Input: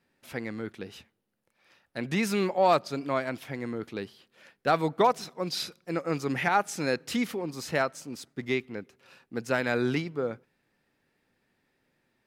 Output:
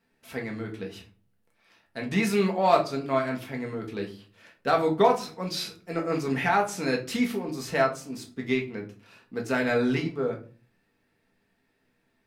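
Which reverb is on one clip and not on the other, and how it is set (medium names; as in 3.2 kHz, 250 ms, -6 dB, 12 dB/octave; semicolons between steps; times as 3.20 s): simulated room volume 200 m³, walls furnished, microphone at 1.6 m; trim -1.5 dB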